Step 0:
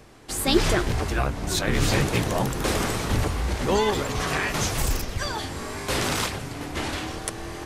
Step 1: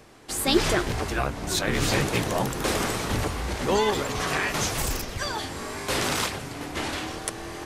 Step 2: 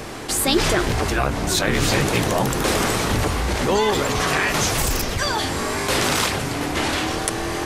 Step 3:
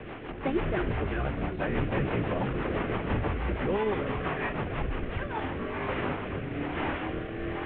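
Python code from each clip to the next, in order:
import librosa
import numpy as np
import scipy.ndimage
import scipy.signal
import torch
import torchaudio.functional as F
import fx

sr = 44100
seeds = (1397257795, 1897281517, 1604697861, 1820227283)

y1 = fx.low_shelf(x, sr, hz=140.0, db=-6.5)
y2 = fx.env_flatten(y1, sr, amount_pct=50)
y2 = y2 * 10.0 ** (1.0 / 20.0)
y3 = fx.cvsd(y2, sr, bps=16000)
y3 = fx.rotary_switch(y3, sr, hz=6.0, then_hz=1.1, switch_at_s=4.85)
y3 = y3 * 10.0 ** (-5.0 / 20.0)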